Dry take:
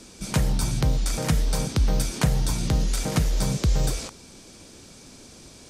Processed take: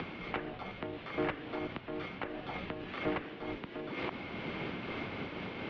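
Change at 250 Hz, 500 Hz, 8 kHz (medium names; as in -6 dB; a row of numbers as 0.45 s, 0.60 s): -9.5 dB, -5.0 dB, under -40 dB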